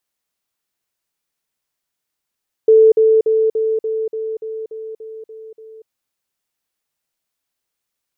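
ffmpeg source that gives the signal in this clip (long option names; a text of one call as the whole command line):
ffmpeg -f lavfi -i "aevalsrc='pow(10,(-5.5-3*floor(t/0.29))/20)*sin(2*PI*441*t)*clip(min(mod(t,0.29),0.24-mod(t,0.29))/0.005,0,1)':duration=3.19:sample_rate=44100" out.wav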